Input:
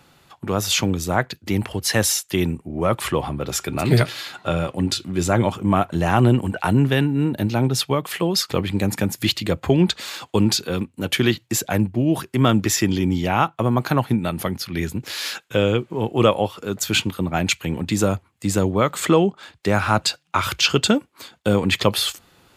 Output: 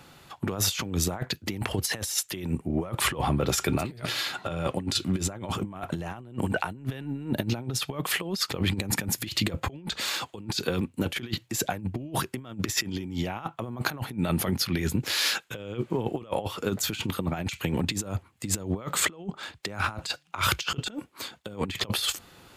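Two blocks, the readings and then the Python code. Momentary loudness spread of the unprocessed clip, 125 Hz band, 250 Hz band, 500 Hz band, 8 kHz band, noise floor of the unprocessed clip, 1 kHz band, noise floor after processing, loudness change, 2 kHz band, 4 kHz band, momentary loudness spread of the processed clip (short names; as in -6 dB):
7 LU, -9.5 dB, -10.5 dB, -12.0 dB, -4.5 dB, -59 dBFS, -9.5 dB, -57 dBFS, -8.5 dB, -6.0 dB, -5.5 dB, 8 LU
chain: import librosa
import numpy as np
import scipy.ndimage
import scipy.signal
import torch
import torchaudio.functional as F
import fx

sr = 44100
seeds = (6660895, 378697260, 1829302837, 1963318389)

y = fx.over_compress(x, sr, threshold_db=-25.0, ratio=-0.5)
y = y * 10.0 ** (-3.5 / 20.0)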